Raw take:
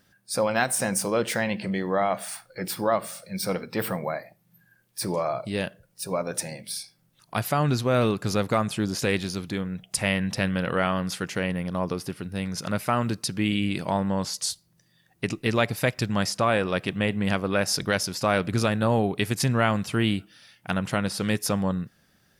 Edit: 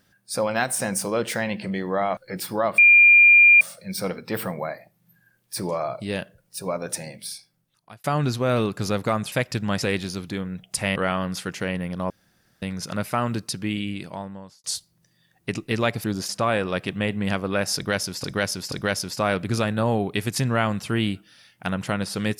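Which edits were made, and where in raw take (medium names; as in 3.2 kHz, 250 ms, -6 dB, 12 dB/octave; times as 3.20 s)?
2.17–2.45 s: delete
3.06 s: add tone 2.4 kHz -9 dBFS 0.83 s
6.63–7.49 s: fade out
8.77–9.02 s: swap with 15.79–16.29 s
10.16–10.71 s: delete
11.85–12.37 s: room tone
13.19–14.39 s: fade out
17.76–18.24 s: loop, 3 plays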